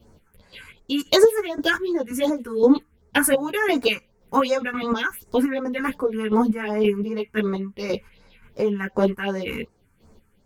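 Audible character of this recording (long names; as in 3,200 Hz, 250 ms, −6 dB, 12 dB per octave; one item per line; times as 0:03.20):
phaser sweep stages 4, 2.7 Hz, lowest notch 570–3,200 Hz
chopped level 1.9 Hz, depth 60%, duty 35%
a shimmering, thickened sound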